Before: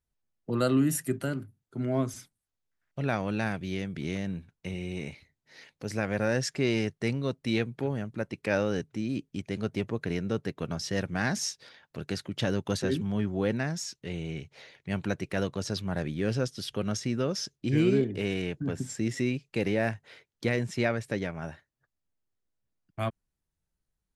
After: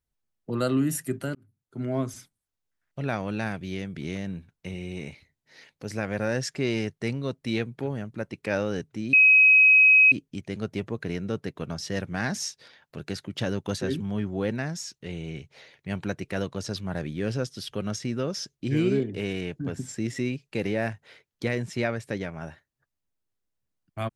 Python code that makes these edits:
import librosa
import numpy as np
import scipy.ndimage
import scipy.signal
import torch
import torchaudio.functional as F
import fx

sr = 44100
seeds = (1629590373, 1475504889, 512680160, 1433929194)

y = fx.edit(x, sr, fx.fade_in_span(start_s=1.35, length_s=0.47),
    fx.insert_tone(at_s=9.13, length_s=0.99, hz=2540.0, db=-12.5), tone=tone)